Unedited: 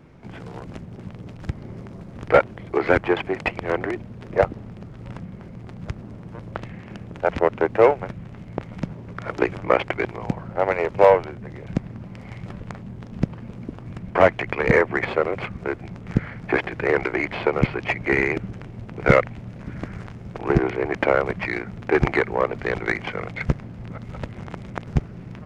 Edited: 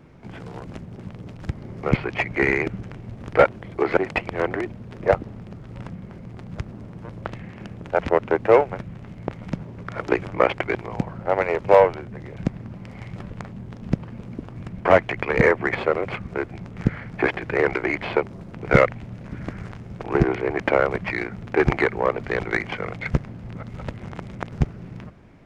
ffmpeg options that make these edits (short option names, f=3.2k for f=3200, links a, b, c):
-filter_complex "[0:a]asplit=6[a][b][c][d][e][f];[a]atrim=end=1.832[g];[b]atrim=start=17.528:end=18.872[h];[c]atrim=start=2.118:end=2.922[i];[d]atrim=start=3.268:end=17.532[j];[e]atrim=start=1.828:end=2.122[k];[f]atrim=start=18.868[l];[g][h]acrossfade=d=0.004:c1=hsin:c2=hsin[m];[m][i]acrossfade=d=0.004:c1=hsin:c2=hsin[n];[n][j]acrossfade=d=0.004:c1=hsin:c2=hsin[o];[o][k]acrossfade=d=0.004:c1=hsin:c2=hsin[p];[p][l]acrossfade=d=0.004:c1=hsin:c2=hsin"